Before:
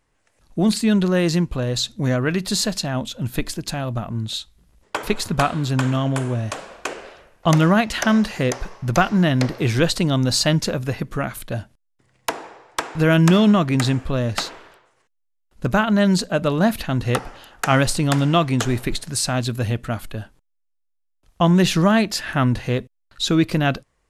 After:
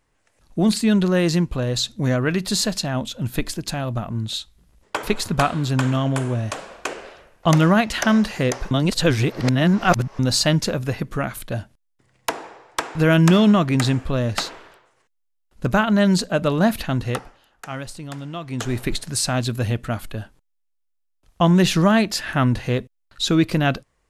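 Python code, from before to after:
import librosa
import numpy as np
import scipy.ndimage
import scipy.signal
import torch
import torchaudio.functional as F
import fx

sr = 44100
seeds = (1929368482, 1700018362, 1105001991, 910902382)

y = fx.edit(x, sr, fx.reverse_span(start_s=8.71, length_s=1.48),
    fx.fade_down_up(start_s=16.91, length_s=1.97, db=-14.5, fade_s=0.46), tone=tone)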